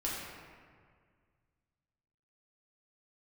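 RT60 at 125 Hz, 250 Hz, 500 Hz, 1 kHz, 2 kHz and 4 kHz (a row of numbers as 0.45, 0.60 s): 2.7, 2.2, 2.0, 1.8, 1.7, 1.1 s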